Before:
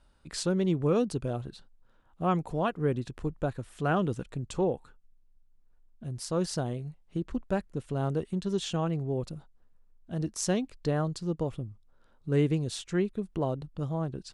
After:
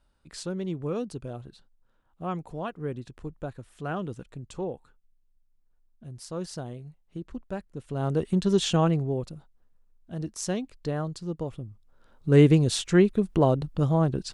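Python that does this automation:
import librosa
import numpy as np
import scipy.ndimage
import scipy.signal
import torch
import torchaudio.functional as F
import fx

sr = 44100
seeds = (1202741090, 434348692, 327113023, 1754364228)

y = fx.gain(x, sr, db=fx.line((7.71, -5.0), (8.32, 7.5), (8.87, 7.5), (9.33, -1.5), (11.6, -1.5), (12.42, 9.0)))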